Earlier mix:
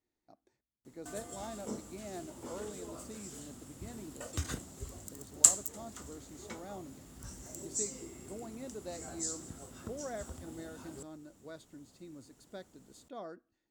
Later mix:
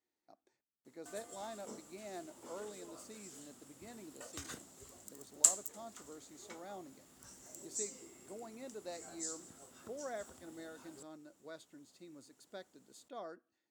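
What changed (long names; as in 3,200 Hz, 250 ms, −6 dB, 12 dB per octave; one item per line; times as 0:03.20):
background −5.0 dB
master: add high-pass filter 430 Hz 6 dB per octave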